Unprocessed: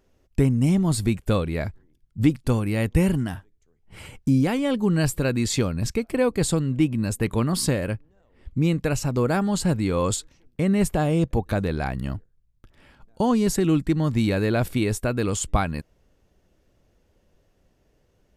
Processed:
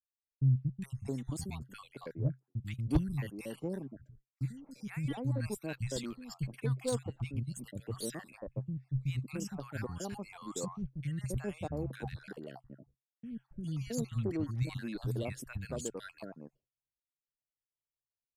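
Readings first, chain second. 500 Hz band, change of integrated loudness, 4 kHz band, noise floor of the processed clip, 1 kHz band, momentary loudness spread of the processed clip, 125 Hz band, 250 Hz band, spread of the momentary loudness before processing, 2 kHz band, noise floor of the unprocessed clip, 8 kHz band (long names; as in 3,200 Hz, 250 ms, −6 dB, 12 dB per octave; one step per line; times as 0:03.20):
−16.0 dB, −14.5 dB, −15.5 dB, below −85 dBFS, −18.0 dB, 13 LU, −11.0 dB, −16.5 dB, 9 LU, −16.0 dB, −65 dBFS, −14.5 dB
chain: time-frequency cells dropped at random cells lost 46%
three-band delay without the direct sound lows, highs, mids 440/670 ms, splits 210/1,100 Hz
harmonic generator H 3 −13 dB, 5 −26 dB, 6 −36 dB, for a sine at −10 dBFS
downward expander −50 dBFS
parametric band 130 Hz +12 dB 0.27 octaves
level −8 dB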